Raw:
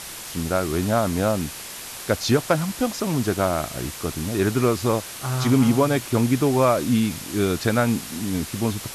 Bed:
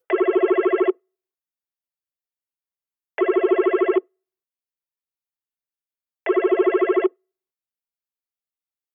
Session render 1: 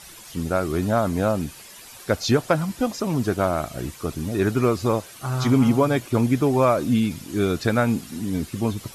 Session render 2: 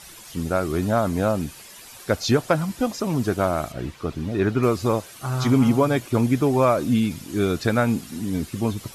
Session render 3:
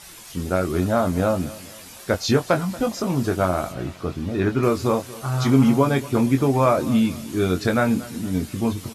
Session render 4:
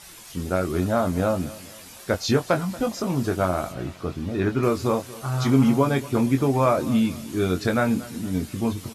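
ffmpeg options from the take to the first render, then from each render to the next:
-af "afftdn=nr=11:nf=-36"
-filter_complex "[0:a]asettb=1/sr,asplit=3[a][b][c];[a]atrim=end=3.724[d];[b]atrim=start=3.72:end=4.63,asetpts=PTS-STARTPTS,afade=t=in:d=0.004:c=qsin,afade=t=out:st=0.906:d=0.004:c=qsin,acrossover=split=4700[e][f];[f]acompressor=threshold=-58dB:ratio=4:attack=1:release=60[g];[e][g]amix=inputs=2:normalize=0[h];[c]atrim=start=4.626[i];[d][h]acrossfade=d=0.004:c1=hsin:c2=qsin[j];[j][i]acrossfade=d=0.004:c1=qsin:c2=hsin"
-filter_complex "[0:a]asplit=2[a][b];[b]adelay=22,volume=-6.5dB[c];[a][c]amix=inputs=2:normalize=0,aecho=1:1:232|464|696:0.112|0.0449|0.018"
-af "volume=-2dB"

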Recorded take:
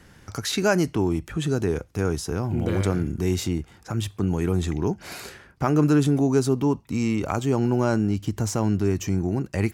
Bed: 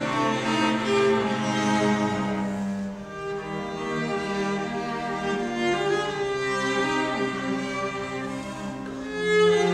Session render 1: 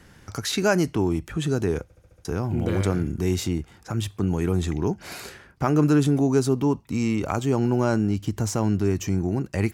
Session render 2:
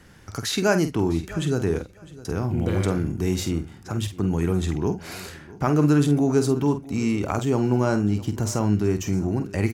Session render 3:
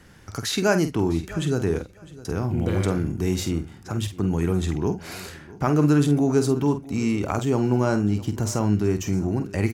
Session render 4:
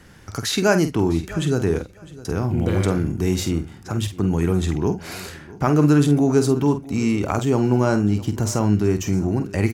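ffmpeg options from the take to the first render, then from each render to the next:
-filter_complex "[0:a]asplit=7[a][b][c][d][e][f][g];[a]atrim=end=1.902[h];[b]atrim=start=1.828:end=1.902[i];[c]atrim=start=1.828:end=1.902[j];[d]atrim=start=1.828:end=1.902[k];[e]atrim=start=1.828:end=1.902[l];[f]atrim=start=1.828:end=1.902[m];[g]atrim=start=2.248[n];[h][i]acrossfade=d=0.004:c1=hsin:c2=hsin[o];[o][j]acrossfade=d=0.004:c1=hsin:c2=hsin[p];[p][k]acrossfade=d=0.004:c1=hsin:c2=hsin[q];[q][l]acrossfade=d=0.004:c1=hsin:c2=hsin[r];[r][m]acrossfade=d=0.004:c1=hsin:c2=hsin[s];[s][n]acrossfade=d=0.004:c1=hsin:c2=hsin"
-filter_complex "[0:a]asplit=2[a][b];[b]adelay=48,volume=-9.5dB[c];[a][c]amix=inputs=2:normalize=0,aecho=1:1:655|1310:0.106|0.0212"
-af anull
-af "volume=3dB"

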